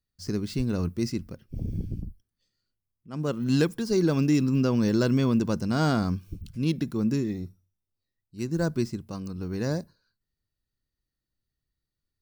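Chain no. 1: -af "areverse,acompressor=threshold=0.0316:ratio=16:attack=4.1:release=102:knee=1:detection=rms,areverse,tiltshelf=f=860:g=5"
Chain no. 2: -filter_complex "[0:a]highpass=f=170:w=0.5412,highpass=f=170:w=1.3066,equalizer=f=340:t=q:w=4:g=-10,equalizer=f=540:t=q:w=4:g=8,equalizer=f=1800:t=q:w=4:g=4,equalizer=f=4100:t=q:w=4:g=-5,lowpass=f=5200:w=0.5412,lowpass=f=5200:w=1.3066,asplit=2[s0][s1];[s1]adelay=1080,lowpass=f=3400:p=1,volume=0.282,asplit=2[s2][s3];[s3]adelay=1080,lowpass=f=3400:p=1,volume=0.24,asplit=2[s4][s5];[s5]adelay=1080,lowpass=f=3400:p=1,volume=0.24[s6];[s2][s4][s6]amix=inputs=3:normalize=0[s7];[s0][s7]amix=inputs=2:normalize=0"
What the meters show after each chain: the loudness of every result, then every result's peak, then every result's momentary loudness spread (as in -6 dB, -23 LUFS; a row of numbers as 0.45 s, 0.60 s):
-33.0 LUFS, -29.5 LUFS; -20.5 dBFS, -10.5 dBFS; 6 LU, 18 LU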